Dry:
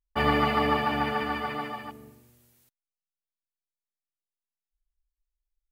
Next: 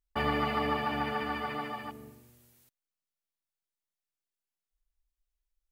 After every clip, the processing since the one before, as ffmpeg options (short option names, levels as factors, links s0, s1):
-af "acompressor=threshold=0.0141:ratio=1.5"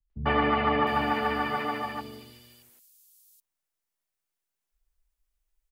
-filter_complex "[0:a]acrossover=split=160|3900[s0][s1][s2];[s2]alimiter=level_in=17.8:limit=0.0631:level=0:latency=1,volume=0.0562[s3];[s0][s1][s3]amix=inputs=3:normalize=0,acrossover=split=190|4000[s4][s5][s6];[s5]adelay=100[s7];[s6]adelay=710[s8];[s4][s7][s8]amix=inputs=3:normalize=0,volume=2"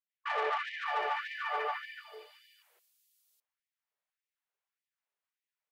-af "asoftclip=type=tanh:threshold=0.0447,bass=f=250:g=13,treble=f=4000:g=-14,afftfilt=real='re*gte(b*sr/1024,360*pow(1800/360,0.5+0.5*sin(2*PI*1.7*pts/sr)))':imag='im*gte(b*sr/1024,360*pow(1800/360,0.5+0.5*sin(2*PI*1.7*pts/sr)))':win_size=1024:overlap=0.75"